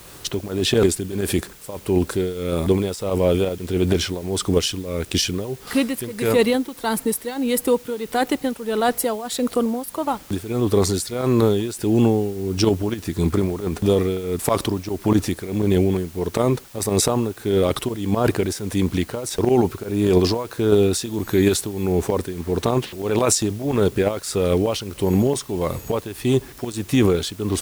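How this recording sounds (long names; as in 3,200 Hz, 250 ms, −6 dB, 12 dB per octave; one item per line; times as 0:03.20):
tremolo triangle 1.6 Hz, depth 85%
a quantiser's noise floor 8 bits, dither triangular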